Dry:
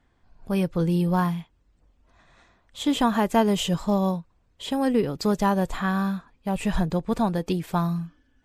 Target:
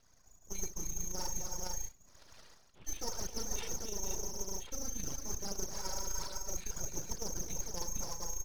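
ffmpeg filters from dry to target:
ffmpeg -i in.wav -filter_complex "[0:a]lowpass=frequency=2900:width_type=q:width=0.5098,lowpass=frequency=2900:width_type=q:width=0.6013,lowpass=frequency=2900:width_type=q:width=0.9,lowpass=frequency=2900:width_type=q:width=2.563,afreqshift=-3400,asplit=2[link_01][link_02];[link_02]aecho=0:1:48|68|264|314|333|459:0.15|0.211|0.237|0.15|0.211|0.376[link_03];[link_01][link_03]amix=inputs=2:normalize=0,aphaser=in_gain=1:out_gain=1:delay=2.4:decay=0.57:speed=1.8:type=triangular,areverse,acompressor=threshold=-34dB:ratio=8,areverse,aecho=1:1:2.2:0.39,aeval=exprs='abs(val(0))':channel_layout=same,volume=-1dB" out.wav

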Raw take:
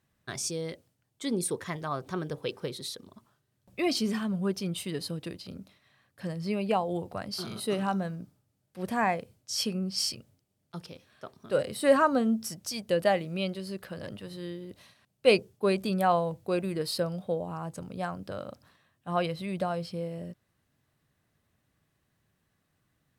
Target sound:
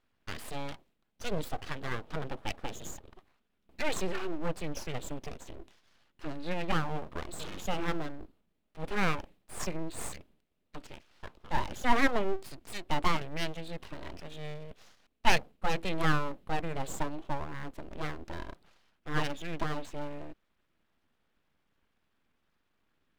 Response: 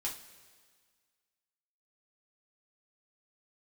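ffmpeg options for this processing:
-af "highshelf=frequency=5000:width_type=q:width=1.5:gain=-11,asetrate=38170,aresample=44100,atempo=1.15535,aeval=exprs='abs(val(0))':channel_layout=same"

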